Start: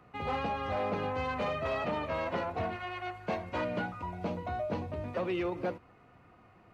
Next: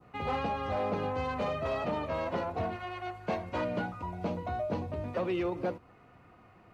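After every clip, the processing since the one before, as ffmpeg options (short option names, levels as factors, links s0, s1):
-af "adynamicequalizer=threshold=0.00316:dfrequency=2100:dqfactor=0.82:tfrequency=2100:tqfactor=0.82:attack=5:release=100:ratio=0.375:range=2.5:mode=cutabove:tftype=bell,volume=1.19"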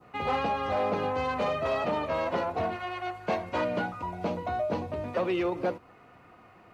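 -af "lowshelf=f=190:g=-8.5,volume=1.78"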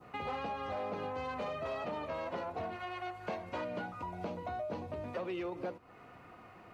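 -af "acompressor=threshold=0.00891:ratio=2.5"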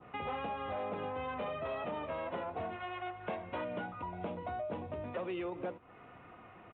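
-af "aresample=8000,aresample=44100"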